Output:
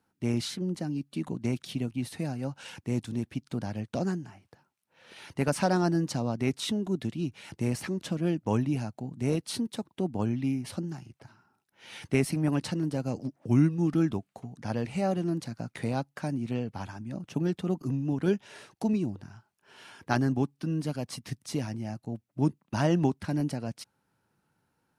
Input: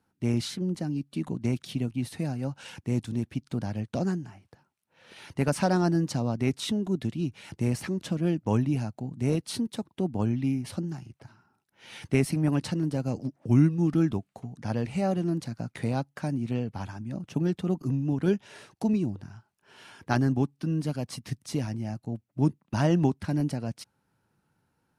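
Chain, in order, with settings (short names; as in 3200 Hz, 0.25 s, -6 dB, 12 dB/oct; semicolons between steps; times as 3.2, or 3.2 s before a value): low shelf 170 Hz -5 dB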